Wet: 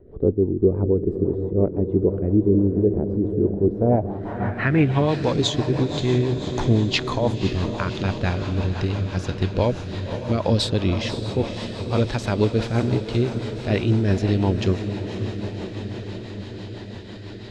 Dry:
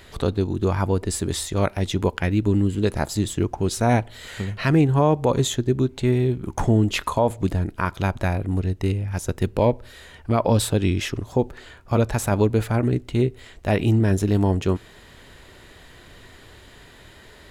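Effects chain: diffused feedback echo 0.552 s, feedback 74%, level -9 dB; rotary speaker horn 6 Hz; low-pass sweep 410 Hz -> 4600 Hz, 3.73–5.21

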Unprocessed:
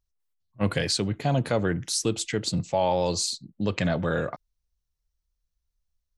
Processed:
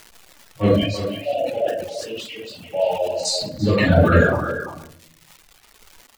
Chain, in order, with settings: bin magnitudes rounded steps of 30 dB; 0.7–3.25 double band-pass 1300 Hz, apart 2.2 oct; shoebox room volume 350 m³, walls mixed, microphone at 4.4 m; crackle 490/s -33 dBFS; reverb removal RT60 1.3 s; speakerphone echo 0.34 s, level -8 dB; sustainer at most 65 dB/s

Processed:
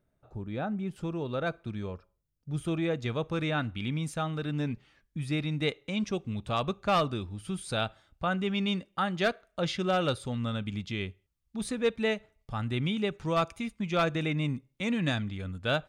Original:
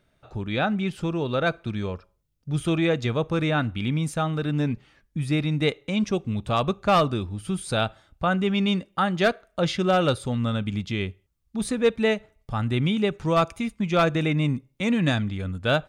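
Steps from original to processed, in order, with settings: bell 3400 Hz -12 dB 2.5 oct, from 0.96 s -3.5 dB, from 3.06 s +2.5 dB; gain -7 dB

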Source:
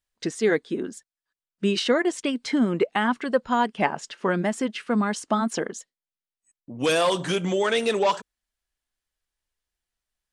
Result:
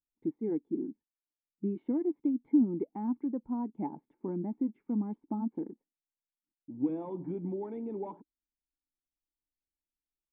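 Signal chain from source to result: vocal tract filter u; bell 600 Hz -8.5 dB 1.3 oct; gain +2.5 dB

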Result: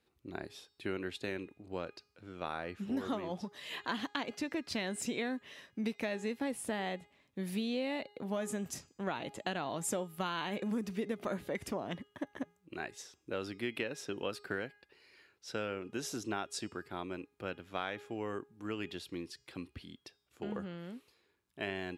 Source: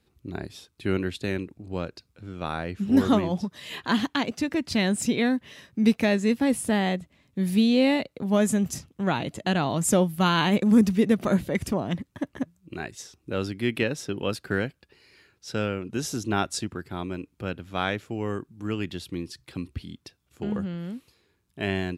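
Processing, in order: tone controls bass -11 dB, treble -4 dB; de-hum 412.6 Hz, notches 20; compressor, threshold -28 dBFS, peak gain reduction 9.5 dB; gain -4.5 dB

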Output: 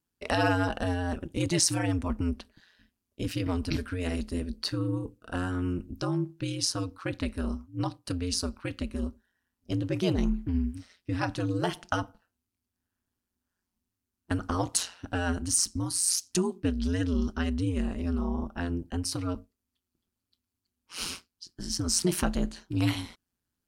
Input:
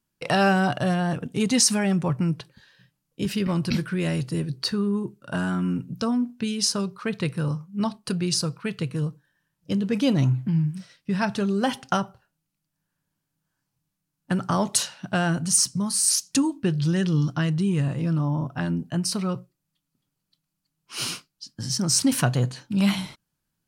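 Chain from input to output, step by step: ring modulator 89 Hz; gain -2.5 dB

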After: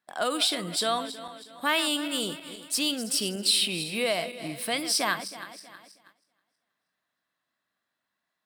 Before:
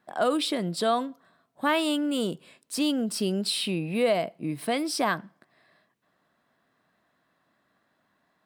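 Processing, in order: regenerating reverse delay 0.16 s, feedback 63%, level -12 dB; tilt shelf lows -7 dB, about 1400 Hz; gate -55 dBFS, range -12 dB

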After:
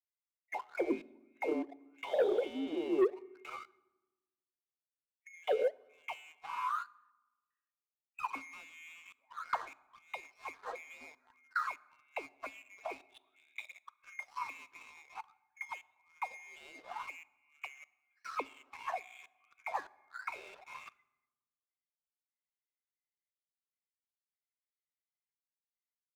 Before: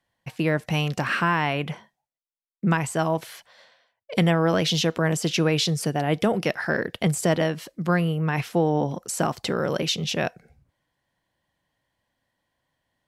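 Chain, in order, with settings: band-swap scrambler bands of 2000 Hz; speakerphone echo 0.17 s, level -14 dB; gate -44 dBFS, range -27 dB; plain phase-vocoder stretch 2×; high-pass sweep 380 Hz -> 1200 Hz, 5.37–6.29; in parallel at +1.5 dB: compressor 6:1, threshold -33 dBFS, peak gain reduction 16.5 dB; on the sum: dynamic EQ 1400 Hz, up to -4 dB, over -33 dBFS, Q 1.7; step gate "xxxxx..x.." 74 bpm -24 dB; air absorption 110 m; auto-wah 270–1900 Hz, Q 19, down, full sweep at -19 dBFS; sample leveller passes 2; on a send at -20 dB: reverb RT60 1.1 s, pre-delay 4 ms; on the sum: gain +7 dB

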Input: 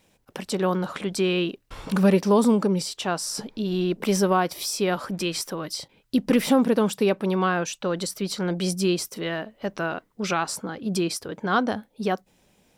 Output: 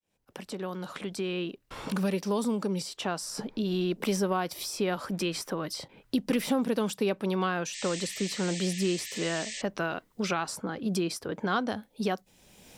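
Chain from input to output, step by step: opening faded in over 3.93 s; painted sound noise, 7.73–9.62, 1700–8600 Hz -35 dBFS; three-band squash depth 70%; gain -5.5 dB

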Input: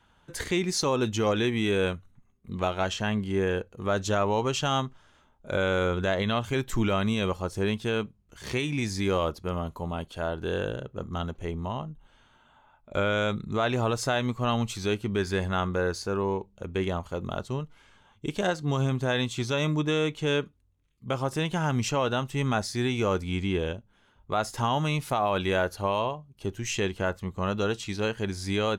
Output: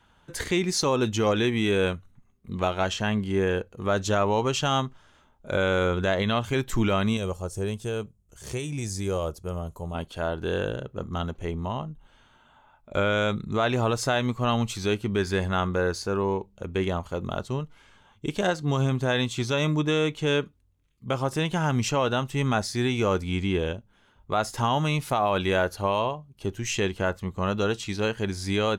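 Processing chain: 7.17–9.95 ten-band EQ 250 Hz -8 dB, 1000 Hz -6 dB, 2000 Hz -9 dB, 4000 Hz -8 dB, 8000 Hz +6 dB; gain +2 dB

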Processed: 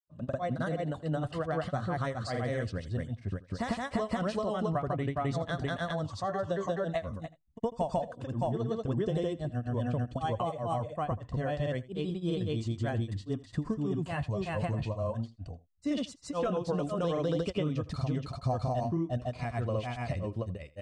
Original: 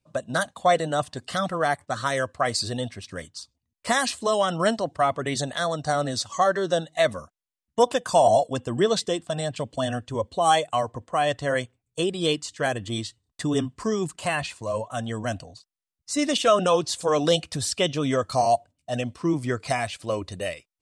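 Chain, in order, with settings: RIAA curve playback; compressor 5:1, threshold -23 dBFS, peak gain reduction 11.5 dB; grains 0.163 s, grains 16/s, spray 0.409 s, pitch spread up and down by 0 st; on a send: echo 82 ms -19.5 dB; on the sum: gain -3 dB

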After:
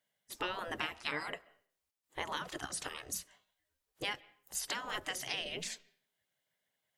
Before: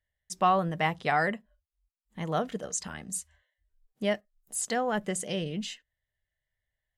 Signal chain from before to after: spectral gate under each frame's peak -15 dB weak; compressor 10:1, threshold -41 dBFS, peak gain reduction 11 dB; on a send: reverb RT60 0.50 s, pre-delay 95 ms, DRR 23 dB; on the sum: gain +7.5 dB

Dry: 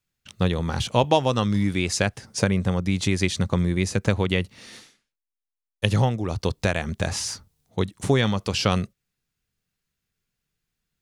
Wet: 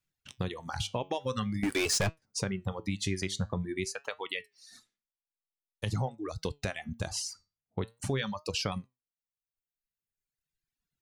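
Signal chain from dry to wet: 3.85–4.71 HPF 940 Hz 6 dB/oct; reverb removal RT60 1.7 s; 7.33–7.82 LPF 2400 Hz 24 dB/oct; reverb removal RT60 0.86 s; 1.63–2.22 sample leveller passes 5; limiter -13 dBFS, peak gain reduction 10.5 dB; compressor 3:1, threshold -24 dBFS, peak gain reduction 7 dB; flange 0.47 Hz, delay 6.1 ms, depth 4.7 ms, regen +79%

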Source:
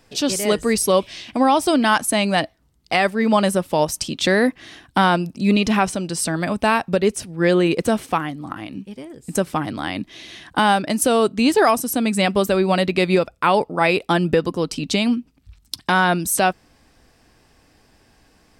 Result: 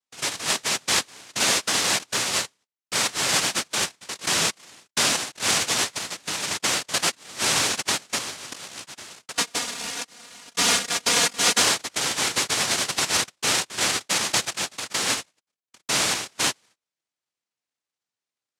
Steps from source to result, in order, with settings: ladder low-pass 2900 Hz, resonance 30%; noise vocoder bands 1; gate -51 dBFS, range -27 dB; 9.35–11.62 comb 4.2 ms, depth 70%

